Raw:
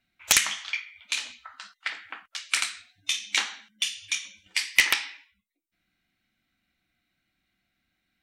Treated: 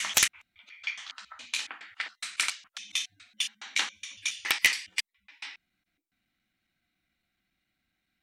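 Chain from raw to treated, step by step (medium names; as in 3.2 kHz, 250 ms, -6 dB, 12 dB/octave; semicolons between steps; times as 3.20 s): slices played last to first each 139 ms, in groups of 4; trim -2.5 dB; MP3 112 kbps 44.1 kHz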